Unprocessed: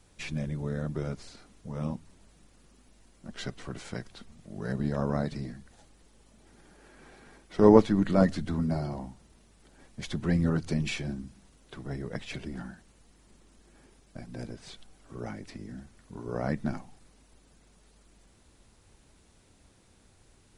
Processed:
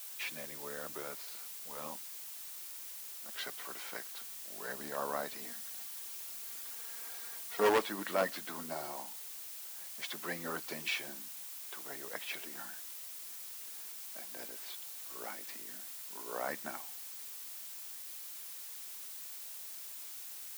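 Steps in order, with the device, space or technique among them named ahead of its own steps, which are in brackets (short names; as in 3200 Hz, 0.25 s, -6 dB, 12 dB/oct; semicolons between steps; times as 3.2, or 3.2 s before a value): drive-through speaker (BPF 390–3600 Hz; bell 1000 Hz +4 dB; hard clip -17.5 dBFS, distortion -10 dB; white noise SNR 15 dB); 5.38–7.69 comb 4.3 ms, depth 63%; tilt +3 dB/oct; gain -3 dB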